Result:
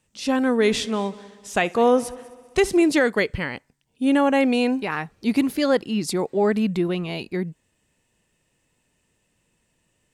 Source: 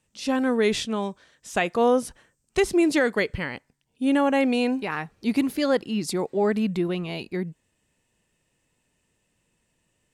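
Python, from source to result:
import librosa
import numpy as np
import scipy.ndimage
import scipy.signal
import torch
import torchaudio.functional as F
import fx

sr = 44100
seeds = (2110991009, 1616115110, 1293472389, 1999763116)

y = fx.echo_heads(x, sr, ms=65, heads='first and third', feedback_pct=55, wet_db=-22, at=(0.59, 2.82), fade=0.02)
y = y * 10.0 ** (2.5 / 20.0)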